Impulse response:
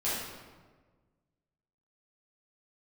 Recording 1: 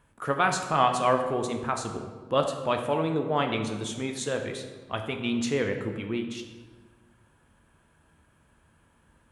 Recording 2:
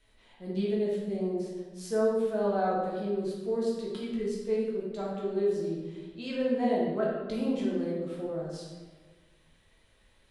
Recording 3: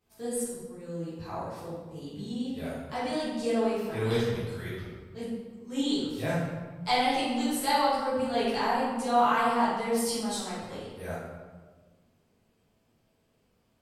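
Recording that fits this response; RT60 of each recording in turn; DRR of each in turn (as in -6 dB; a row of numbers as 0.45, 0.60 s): 3; 1.4, 1.4, 1.4 s; 4.0, -5.5, -11.0 dB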